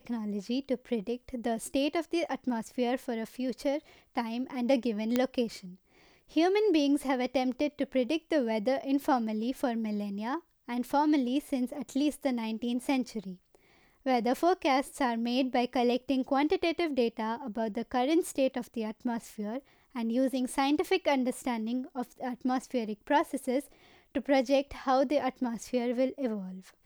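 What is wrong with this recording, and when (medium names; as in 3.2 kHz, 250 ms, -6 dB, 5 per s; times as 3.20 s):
5.16 s: pop -13 dBFS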